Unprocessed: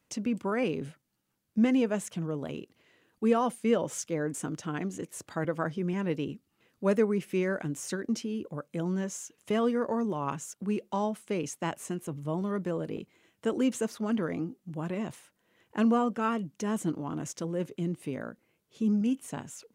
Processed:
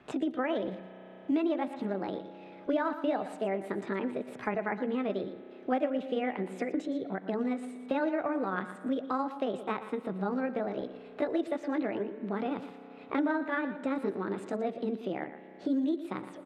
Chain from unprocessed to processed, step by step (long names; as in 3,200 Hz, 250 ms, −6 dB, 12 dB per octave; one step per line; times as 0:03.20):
pitch shift by two crossfaded delay taps +4.5 semitones
low-pass filter 2,700 Hz 12 dB per octave
parametric band 86 Hz −2.5 dB 2.6 octaves
tempo change 1.2×
on a send: single-tap delay 117 ms −13.5 dB
on the sum: spring reverb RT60 2 s, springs 32 ms, chirp 40 ms, DRR 16 dB
multiband upward and downward compressor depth 70%